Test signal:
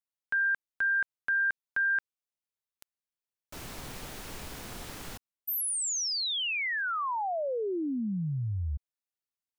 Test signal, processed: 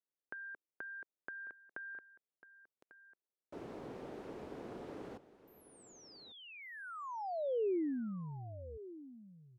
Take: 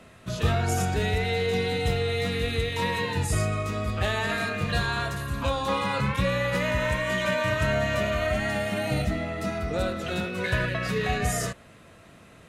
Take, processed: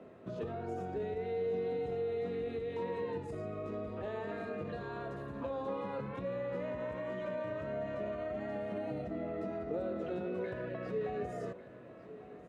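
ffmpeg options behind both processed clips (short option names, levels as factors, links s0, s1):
-af "acompressor=threshold=0.0112:ratio=4:attack=25:release=37:detection=peak,bandpass=f=400:t=q:w=1.5:csg=0,aecho=1:1:1146:0.168,volume=1.58"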